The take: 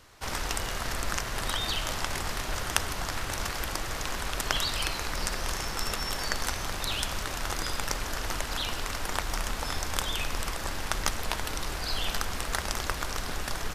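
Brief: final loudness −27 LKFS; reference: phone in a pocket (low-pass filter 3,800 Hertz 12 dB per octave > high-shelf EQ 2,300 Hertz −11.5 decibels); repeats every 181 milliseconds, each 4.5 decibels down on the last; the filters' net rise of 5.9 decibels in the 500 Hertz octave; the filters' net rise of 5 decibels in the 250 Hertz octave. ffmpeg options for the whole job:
ffmpeg -i in.wav -af "lowpass=3800,equalizer=frequency=250:width_type=o:gain=4.5,equalizer=frequency=500:width_type=o:gain=7,highshelf=frequency=2300:gain=-11.5,aecho=1:1:181|362|543|724|905|1086|1267|1448|1629:0.596|0.357|0.214|0.129|0.0772|0.0463|0.0278|0.0167|0.01,volume=5.5dB" out.wav

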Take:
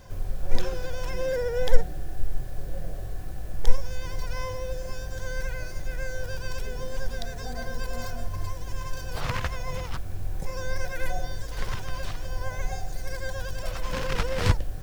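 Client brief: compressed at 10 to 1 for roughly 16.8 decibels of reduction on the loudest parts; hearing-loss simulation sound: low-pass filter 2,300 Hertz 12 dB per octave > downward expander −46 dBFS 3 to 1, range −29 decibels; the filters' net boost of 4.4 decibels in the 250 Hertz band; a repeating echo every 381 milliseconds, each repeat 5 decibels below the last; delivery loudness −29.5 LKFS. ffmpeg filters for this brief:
ffmpeg -i in.wav -af "equalizer=frequency=250:width_type=o:gain=6.5,acompressor=threshold=-22dB:ratio=10,lowpass=2300,aecho=1:1:381|762|1143|1524|1905|2286|2667:0.562|0.315|0.176|0.0988|0.0553|0.031|0.0173,agate=range=-29dB:threshold=-46dB:ratio=3,volume=4.5dB" out.wav

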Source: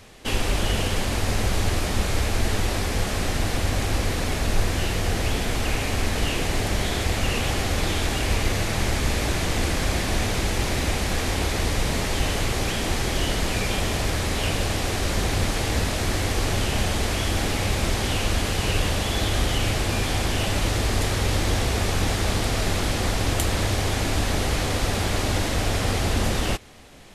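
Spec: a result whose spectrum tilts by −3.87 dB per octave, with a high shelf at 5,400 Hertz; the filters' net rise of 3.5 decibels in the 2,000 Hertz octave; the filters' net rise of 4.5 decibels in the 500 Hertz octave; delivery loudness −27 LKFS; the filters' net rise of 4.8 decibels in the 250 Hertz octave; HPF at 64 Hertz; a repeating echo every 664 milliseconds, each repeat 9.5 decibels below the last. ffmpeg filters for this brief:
ffmpeg -i in.wav -af "highpass=64,equalizer=frequency=250:width_type=o:gain=5,equalizer=frequency=500:width_type=o:gain=4,equalizer=frequency=2000:width_type=o:gain=3.5,highshelf=frequency=5400:gain=4,aecho=1:1:664|1328|1992|2656:0.335|0.111|0.0365|0.012,volume=-5dB" out.wav

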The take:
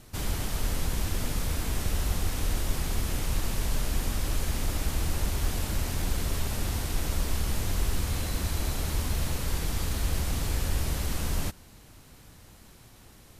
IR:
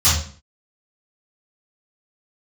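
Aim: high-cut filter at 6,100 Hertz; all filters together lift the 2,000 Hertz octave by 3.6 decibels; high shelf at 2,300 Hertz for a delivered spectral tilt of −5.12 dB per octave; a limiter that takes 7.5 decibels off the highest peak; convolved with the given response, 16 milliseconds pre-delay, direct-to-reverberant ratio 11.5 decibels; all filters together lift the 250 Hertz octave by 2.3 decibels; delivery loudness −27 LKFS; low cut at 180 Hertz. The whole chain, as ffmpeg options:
-filter_complex "[0:a]highpass=180,lowpass=6100,equalizer=frequency=250:width_type=o:gain=5,equalizer=frequency=2000:width_type=o:gain=7.5,highshelf=frequency=2300:gain=-6,alimiter=level_in=5dB:limit=-24dB:level=0:latency=1,volume=-5dB,asplit=2[link_01][link_02];[1:a]atrim=start_sample=2205,adelay=16[link_03];[link_02][link_03]afir=irnorm=-1:irlink=0,volume=-31dB[link_04];[link_01][link_04]amix=inputs=2:normalize=0,volume=9dB"

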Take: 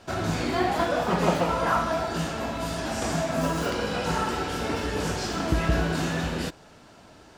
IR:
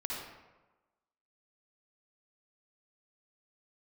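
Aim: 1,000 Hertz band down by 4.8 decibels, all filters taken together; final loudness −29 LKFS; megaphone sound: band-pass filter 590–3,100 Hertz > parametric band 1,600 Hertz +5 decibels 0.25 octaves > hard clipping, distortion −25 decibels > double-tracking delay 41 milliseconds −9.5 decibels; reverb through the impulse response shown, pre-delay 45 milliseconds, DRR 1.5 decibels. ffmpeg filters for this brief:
-filter_complex "[0:a]equalizer=frequency=1000:width_type=o:gain=-6,asplit=2[link_01][link_02];[1:a]atrim=start_sample=2205,adelay=45[link_03];[link_02][link_03]afir=irnorm=-1:irlink=0,volume=-4dB[link_04];[link_01][link_04]amix=inputs=2:normalize=0,highpass=590,lowpass=3100,equalizer=frequency=1600:width_type=o:width=0.25:gain=5,asoftclip=type=hard:threshold=-19.5dB,asplit=2[link_05][link_06];[link_06]adelay=41,volume=-9.5dB[link_07];[link_05][link_07]amix=inputs=2:normalize=0,volume=0.5dB"

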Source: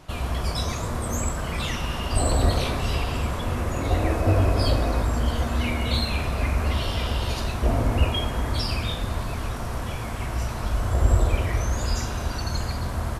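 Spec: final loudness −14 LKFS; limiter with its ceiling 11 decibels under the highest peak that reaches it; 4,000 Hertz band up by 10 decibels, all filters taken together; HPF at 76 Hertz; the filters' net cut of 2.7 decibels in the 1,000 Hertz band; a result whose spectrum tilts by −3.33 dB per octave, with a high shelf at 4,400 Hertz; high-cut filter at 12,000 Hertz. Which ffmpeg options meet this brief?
ffmpeg -i in.wav -af "highpass=76,lowpass=12000,equalizer=frequency=1000:width_type=o:gain=-4.5,equalizer=frequency=4000:width_type=o:gain=8.5,highshelf=frequency=4400:gain=7.5,volume=13.5dB,alimiter=limit=-5dB:level=0:latency=1" out.wav

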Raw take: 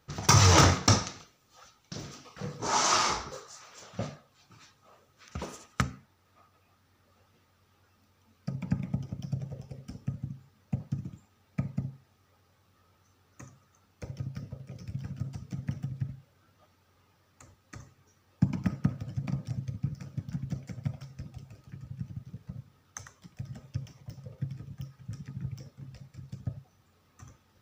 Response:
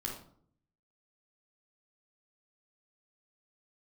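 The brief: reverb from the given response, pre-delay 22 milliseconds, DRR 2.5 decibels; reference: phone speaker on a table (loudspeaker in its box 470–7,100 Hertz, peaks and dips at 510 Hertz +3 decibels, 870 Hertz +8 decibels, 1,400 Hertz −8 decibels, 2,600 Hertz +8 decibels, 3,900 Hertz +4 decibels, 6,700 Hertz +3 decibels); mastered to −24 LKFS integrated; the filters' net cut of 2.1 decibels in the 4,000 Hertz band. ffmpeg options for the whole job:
-filter_complex "[0:a]equalizer=frequency=4000:width_type=o:gain=-6.5,asplit=2[link_01][link_02];[1:a]atrim=start_sample=2205,adelay=22[link_03];[link_02][link_03]afir=irnorm=-1:irlink=0,volume=-3.5dB[link_04];[link_01][link_04]amix=inputs=2:normalize=0,highpass=frequency=470:width=0.5412,highpass=frequency=470:width=1.3066,equalizer=frequency=510:width_type=q:width=4:gain=3,equalizer=frequency=870:width_type=q:width=4:gain=8,equalizer=frequency=1400:width_type=q:width=4:gain=-8,equalizer=frequency=2600:width_type=q:width=4:gain=8,equalizer=frequency=3900:width_type=q:width=4:gain=4,equalizer=frequency=6700:width_type=q:width=4:gain=3,lowpass=frequency=7100:width=0.5412,lowpass=frequency=7100:width=1.3066,volume=2dB"

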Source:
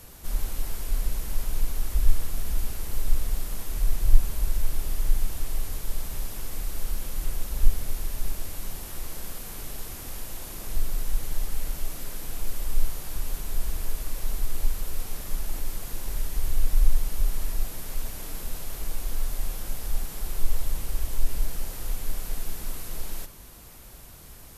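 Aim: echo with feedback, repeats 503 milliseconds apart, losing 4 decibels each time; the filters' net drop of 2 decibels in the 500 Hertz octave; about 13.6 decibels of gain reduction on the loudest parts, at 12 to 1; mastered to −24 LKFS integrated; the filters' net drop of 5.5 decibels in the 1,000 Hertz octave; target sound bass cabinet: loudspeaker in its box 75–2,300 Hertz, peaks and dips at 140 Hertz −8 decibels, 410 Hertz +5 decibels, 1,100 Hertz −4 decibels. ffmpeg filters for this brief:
ffmpeg -i in.wav -af "equalizer=frequency=500:width_type=o:gain=-4.5,equalizer=frequency=1000:width_type=o:gain=-4,acompressor=threshold=-19dB:ratio=12,highpass=frequency=75:width=0.5412,highpass=frequency=75:width=1.3066,equalizer=frequency=140:width_type=q:width=4:gain=-8,equalizer=frequency=410:width_type=q:width=4:gain=5,equalizer=frequency=1100:width_type=q:width=4:gain=-4,lowpass=frequency=2300:width=0.5412,lowpass=frequency=2300:width=1.3066,aecho=1:1:503|1006|1509|2012|2515|3018|3521|4024|4527:0.631|0.398|0.25|0.158|0.0994|0.0626|0.0394|0.0249|0.0157,volume=22dB" out.wav

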